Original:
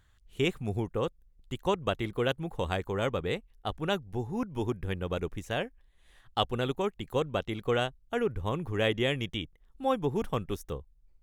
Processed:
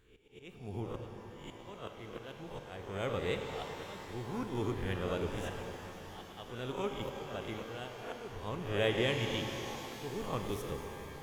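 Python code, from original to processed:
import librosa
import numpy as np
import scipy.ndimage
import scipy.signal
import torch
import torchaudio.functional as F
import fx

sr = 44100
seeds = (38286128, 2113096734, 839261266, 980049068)

y = fx.spec_swells(x, sr, rise_s=0.54)
y = fx.auto_swell(y, sr, attack_ms=625.0)
y = fx.rev_shimmer(y, sr, seeds[0], rt60_s=4.0, semitones=12, shimmer_db=-8, drr_db=4.0)
y = y * 10.0 ** (-5.5 / 20.0)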